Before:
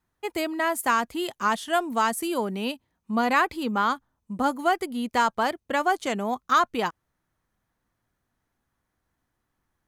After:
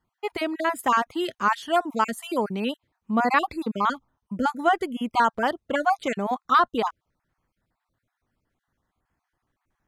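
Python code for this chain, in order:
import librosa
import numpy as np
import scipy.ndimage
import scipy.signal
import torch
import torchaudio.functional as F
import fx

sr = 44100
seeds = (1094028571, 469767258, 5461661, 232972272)

y = fx.spec_dropout(x, sr, seeds[0], share_pct=33)
y = fx.high_shelf(y, sr, hz=6100.0, db=-10.0)
y = y * 10.0 ** (2.5 / 20.0)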